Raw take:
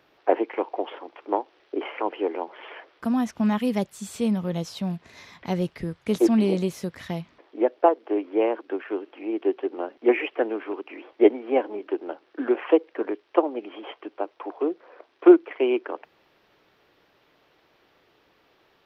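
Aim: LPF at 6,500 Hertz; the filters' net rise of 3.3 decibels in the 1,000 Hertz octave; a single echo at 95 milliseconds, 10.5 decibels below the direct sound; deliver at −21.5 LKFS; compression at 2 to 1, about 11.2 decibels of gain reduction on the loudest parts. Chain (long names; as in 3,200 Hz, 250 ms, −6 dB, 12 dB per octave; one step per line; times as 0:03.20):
low-pass filter 6,500 Hz
parametric band 1,000 Hz +4.5 dB
downward compressor 2 to 1, threshold −29 dBFS
single-tap delay 95 ms −10.5 dB
level +10 dB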